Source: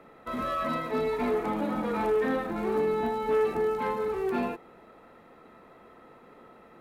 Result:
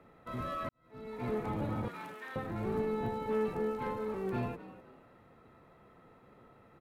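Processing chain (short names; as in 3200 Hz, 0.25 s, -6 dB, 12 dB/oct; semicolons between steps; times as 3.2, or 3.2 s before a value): octaver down 1 oct, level +2 dB; 1.88–2.36 HPF 1300 Hz 12 dB/oct; frequency-shifting echo 0.253 s, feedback 32%, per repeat +69 Hz, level -16 dB; 0.69–1.34 fade in quadratic; gain -8 dB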